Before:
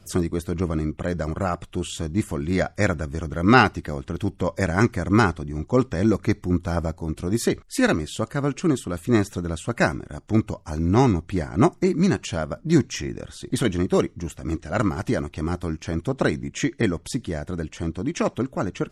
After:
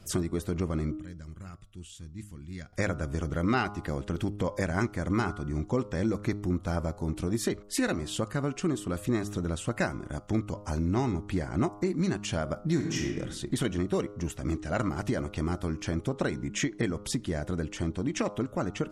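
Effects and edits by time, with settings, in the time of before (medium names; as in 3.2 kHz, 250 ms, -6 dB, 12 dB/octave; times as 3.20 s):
0.97–2.73 s: amplifier tone stack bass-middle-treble 6-0-2
12.68–13.16 s: reverb throw, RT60 0.92 s, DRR 3.5 dB
whole clip: de-hum 102.8 Hz, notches 14; compression 3:1, threshold -27 dBFS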